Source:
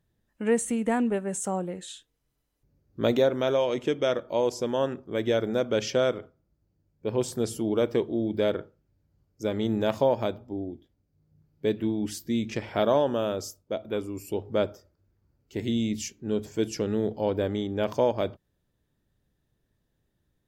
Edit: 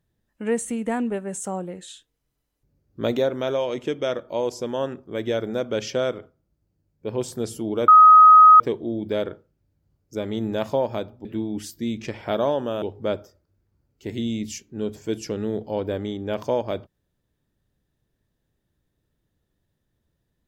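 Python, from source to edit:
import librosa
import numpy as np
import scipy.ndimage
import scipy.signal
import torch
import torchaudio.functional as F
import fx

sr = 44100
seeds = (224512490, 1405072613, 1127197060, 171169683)

y = fx.edit(x, sr, fx.insert_tone(at_s=7.88, length_s=0.72, hz=1260.0, db=-6.5),
    fx.cut(start_s=10.53, length_s=1.2),
    fx.cut(start_s=13.3, length_s=1.02), tone=tone)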